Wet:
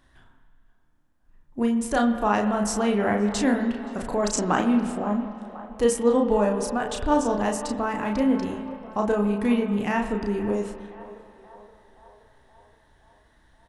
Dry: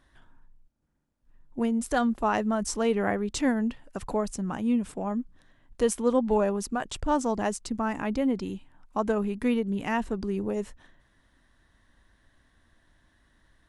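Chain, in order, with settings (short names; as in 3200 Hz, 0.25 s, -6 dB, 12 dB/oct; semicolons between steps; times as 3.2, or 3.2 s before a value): wow and flutter 23 cents; spectral gain 4.23–4.63, 240–8300 Hz +11 dB; doubler 34 ms -4 dB; narrowing echo 0.523 s, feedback 67%, band-pass 820 Hz, level -14.5 dB; spring tank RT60 2.4 s, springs 49/57 ms, chirp 80 ms, DRR 8 dB; gain +1.5 dB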